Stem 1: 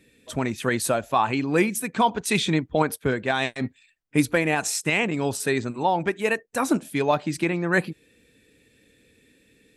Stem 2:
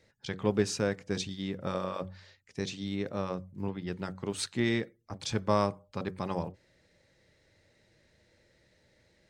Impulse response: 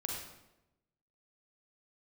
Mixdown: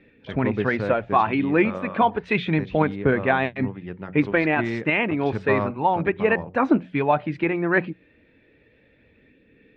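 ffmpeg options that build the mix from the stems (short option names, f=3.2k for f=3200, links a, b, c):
-filter_complex "[0:a]bandreject=f=60:t=h:w=6,bandreject=f=120:t=h:w=6,bandreject=f=180:t=h:w=6,aphaser=in_gain=1:out_gain=1:delay=3.3:decay=0.28:speed=0.31:type=sinusoidal,volume=1.5dB[a];[1:a]volume=1.5dB[b];[a][b]amix=inputs=2:normalize=0,lowpass=f=2.7k:w=0.5412,lowpass=f=2.7k:w=1.3066"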